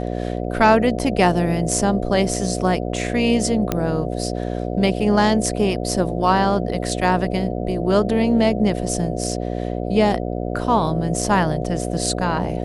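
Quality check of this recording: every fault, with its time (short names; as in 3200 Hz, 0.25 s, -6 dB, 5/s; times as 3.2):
buzz 60 Hz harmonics 12 -25 dBFS
3.72 pop -6 dBFS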